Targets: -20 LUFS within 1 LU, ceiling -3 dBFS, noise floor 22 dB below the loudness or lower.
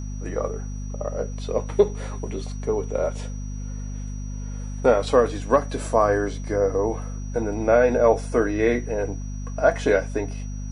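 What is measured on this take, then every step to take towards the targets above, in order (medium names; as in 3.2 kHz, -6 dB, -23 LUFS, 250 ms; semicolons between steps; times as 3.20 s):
hum 50 Hz; highest harmonic 250 Hz; hum level -29 dBFS; steady tone 5.8 kHz; tone level -47 dBFS; loudness -23.5 LUFS; peak level -5.0 dBFS; loudness target -20.0 LUFS
-> hum notches 50/100/150/200/250 Hz; band-stop 5.8 kHz, Q 30; trim +3.5 dB; peak limiter -3 dBFS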